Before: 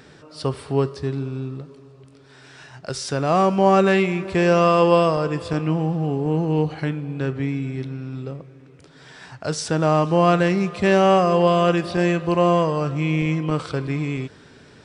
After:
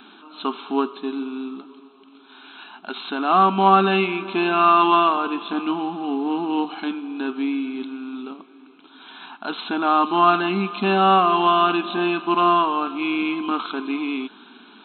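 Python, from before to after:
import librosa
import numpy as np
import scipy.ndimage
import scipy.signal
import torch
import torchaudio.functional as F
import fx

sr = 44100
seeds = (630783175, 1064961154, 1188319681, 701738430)

y = fx.cvsd(x, sr, bps=64000)
y = fx.brickwall_bandpass(y, sr, low_hz=200.0, high_hz=4200.0)
y = fx.peak_eq(y, sr, hz=620.0, db=-5.0, octaves=0.22)
y = fx.fixed_phaser(y, sr, hz=1900.0, stages=6)
y = y * 10.0 ** (7.5 / 20.0)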